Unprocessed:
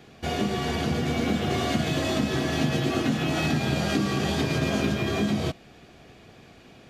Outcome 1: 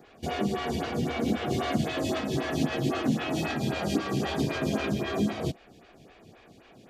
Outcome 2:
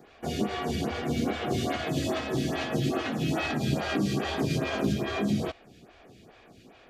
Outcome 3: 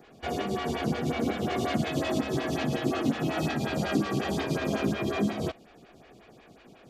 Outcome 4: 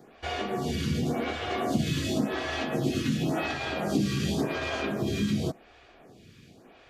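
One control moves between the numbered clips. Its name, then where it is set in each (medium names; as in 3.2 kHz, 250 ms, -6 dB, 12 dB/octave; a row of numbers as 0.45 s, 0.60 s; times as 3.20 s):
lamp-driven phase shifter, rate: 3.8 Hz, 2.4 Hz, 5.5 Hz, 0.91 Hz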